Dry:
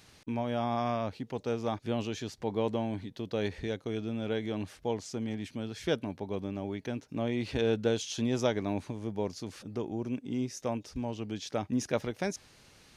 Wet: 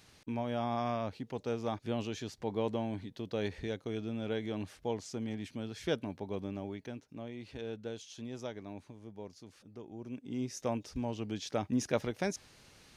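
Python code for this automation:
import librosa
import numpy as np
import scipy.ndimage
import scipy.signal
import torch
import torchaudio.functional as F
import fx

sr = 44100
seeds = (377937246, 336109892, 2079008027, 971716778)

y = fx.gain(x, sr, db=fx.line((6.55, -3.0), (7.33, -13.0), (9.83, -13.0), (10.57, -1.0)))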